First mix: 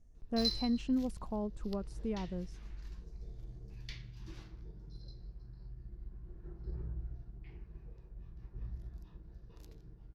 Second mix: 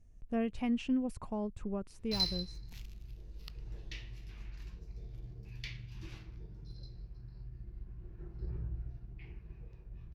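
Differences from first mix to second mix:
background: entry +1.75 s; master: add fifteen-band graphic EQ 100 Hz +6 dB, 2.5 kHz +8 dB, 16 kHz +6 dB

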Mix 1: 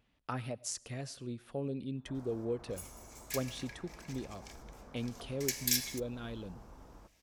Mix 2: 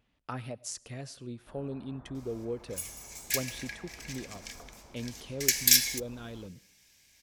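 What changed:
first sound: entry -0.60 s; second sound +10.0 dB

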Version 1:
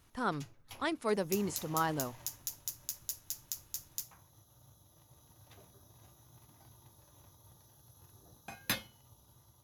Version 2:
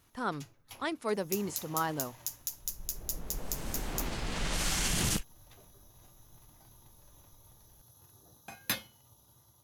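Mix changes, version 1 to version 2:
first sound: add treble shelf 6.7 kHz +4 dB; second sound: unmuted; master: add bass shelf 86 Hz -5 dB

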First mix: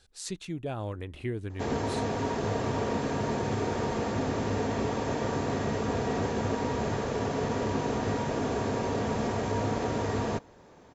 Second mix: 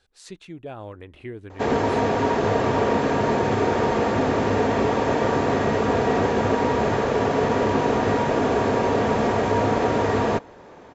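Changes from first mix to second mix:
background +10.5 dB; master: add tone controls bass -6 dB, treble -9 dB

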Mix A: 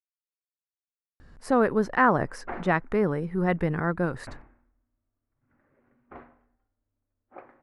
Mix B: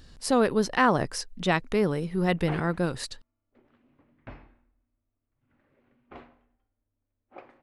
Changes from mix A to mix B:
speech: entry -1.20 s; master: add resonant high shelf 2.4 kHz +11.5 dB, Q 1.5

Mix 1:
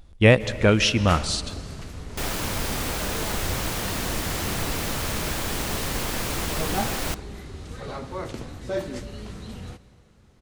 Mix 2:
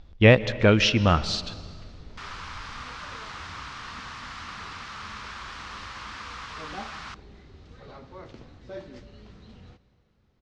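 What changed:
first sound -11.0 dB; second sound: add ladder high-pass 1 kHz, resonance 55%; master: add low-pass 5.4 kHz 24 dB/octave

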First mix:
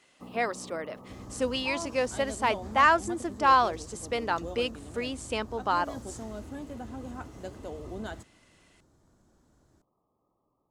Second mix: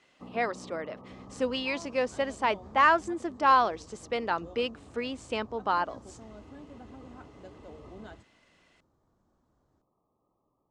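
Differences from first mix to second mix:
second sound -8.5 dB; master: add distance through air 91 m

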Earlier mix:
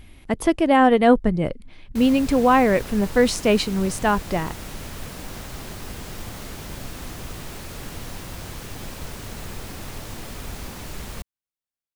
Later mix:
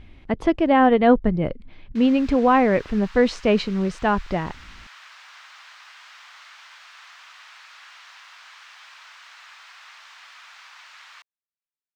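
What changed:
background: add inverse Chebyshev high-pass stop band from 330 Hz, stop band 60 dB; master: add distance through air 170 m

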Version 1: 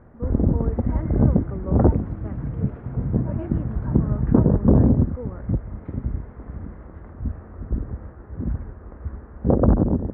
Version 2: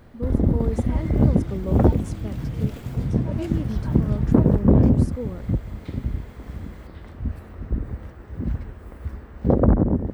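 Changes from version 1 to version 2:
speech: add tilt shelf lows +7.5 dB, about 750 Hz; master: remove low-pass 1.6 kHz 24 dB/octave

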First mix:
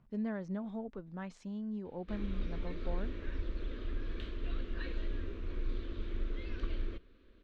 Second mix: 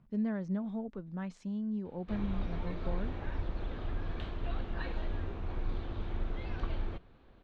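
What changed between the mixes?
speech: add peaking EQ 180 Hz +5 dB 1 oct; background: remove static phaser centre 330 Hz, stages 4

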